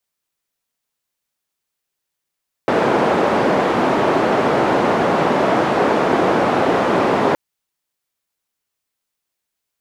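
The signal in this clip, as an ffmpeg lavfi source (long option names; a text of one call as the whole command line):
ffmpeg -f lavfi -i "anoisesrc=color=white:duration=4.67:sample_rate=44100:seed=1,highpass=frequency=210,lowpass=frequency=740,volume=4.5dB" out.wav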